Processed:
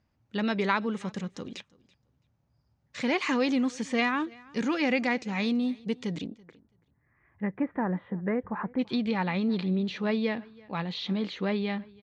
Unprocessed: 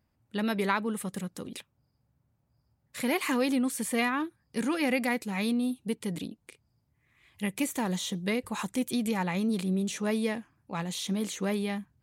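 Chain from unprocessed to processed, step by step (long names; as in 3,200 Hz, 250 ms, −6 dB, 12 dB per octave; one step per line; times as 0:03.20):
elliptic low-pass filter 6,400 Hz, stop band 80 dB, from 0:06.23 1,800 Hz, from 0:08.78 4,400 Hz
repeating echo 332 ms, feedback 16%, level −24 dB
level +2 dB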